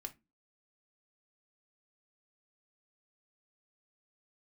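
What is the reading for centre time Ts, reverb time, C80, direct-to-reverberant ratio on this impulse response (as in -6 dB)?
5 ms, 0.20 s, 28.5 dB, 4.0 dB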